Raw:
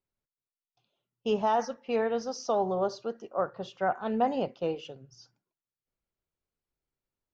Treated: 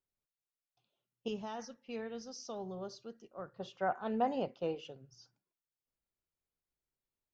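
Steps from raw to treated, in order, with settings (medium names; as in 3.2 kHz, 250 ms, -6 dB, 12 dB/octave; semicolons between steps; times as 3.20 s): 1.28–3.60 s: peaking EQ 790 Hz -13 dB 2.5 oct; trim -5.5 dB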